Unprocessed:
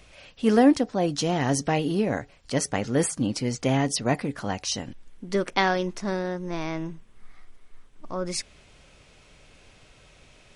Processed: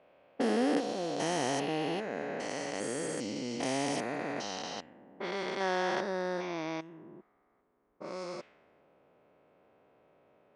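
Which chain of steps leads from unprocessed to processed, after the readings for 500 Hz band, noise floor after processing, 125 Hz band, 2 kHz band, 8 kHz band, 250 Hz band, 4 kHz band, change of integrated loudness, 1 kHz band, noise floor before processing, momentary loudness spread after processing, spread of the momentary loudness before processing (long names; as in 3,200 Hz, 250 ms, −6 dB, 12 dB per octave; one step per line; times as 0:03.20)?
−6.5 dB, −72 dBFS, −15.5 dB, −6.0 dB, −10.0 dB, −10.5 dB, −7.0 dB, −8.5 dB, −6.5 dB, −55 dBFS, 13 LU, 11 LU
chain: spectrum averaged block by block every 400 ms
Bessel high-pass filter 390 Hz, order 2
low-pass that shuts in the quiet parts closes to 690 Hz, open at −29.5 dBFS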